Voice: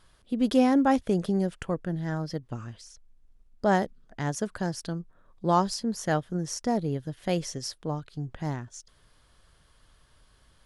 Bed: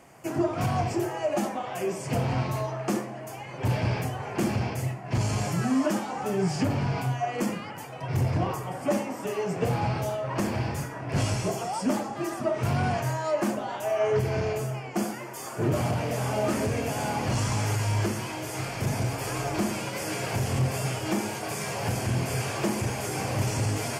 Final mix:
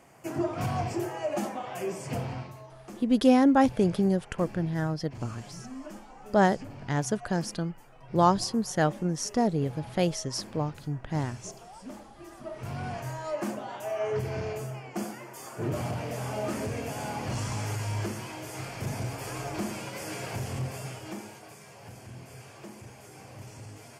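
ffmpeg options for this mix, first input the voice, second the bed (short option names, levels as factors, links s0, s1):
-filter_complex "[0:a]adelay=2700,volume=1.19[s0];[1:a]volume=2.51,afade=t=out:st=2.03:d=0.52:silence=0.211349,afade=t=in:st=12.2:d=1.25:silence=0.266073,afade=t=out:st=20.23:d=1.38:silence=0.237137[s1];[s0][s1]amix=inputs=2:normalize=0"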